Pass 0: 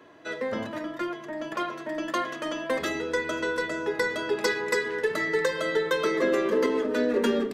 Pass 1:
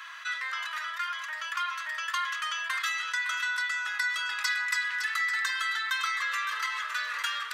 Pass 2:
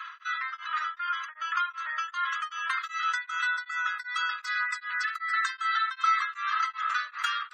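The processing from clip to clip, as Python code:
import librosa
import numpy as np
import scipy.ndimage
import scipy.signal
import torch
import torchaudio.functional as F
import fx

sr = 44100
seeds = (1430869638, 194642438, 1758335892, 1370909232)

y1 = scipy.signal.sosfilt(scipy.signal.ellip(4, 1.0, 80, 1200.0, 'highpass', fs=sr, output='sos'), x)
y1 = y1 + 10.0 ** (-12.5 / 20.0) * np.pad(y1, (int(561 * sr / 1000.0), 0))[:len(y1)]
y1 = fx.env_flatten(y1, sr, amount_pct=50)
y2 = fx.spec_gate(y1, sr, threshold_db=-25, keep='strong')
y2 = fx.peak_eq(y2, sr, hz=1300.0, db=12.0, octaves=0.24)
y2 = y2 * np.abs(np.cos(np.pi * 2.6 * np.arange(len(y2)) / sr))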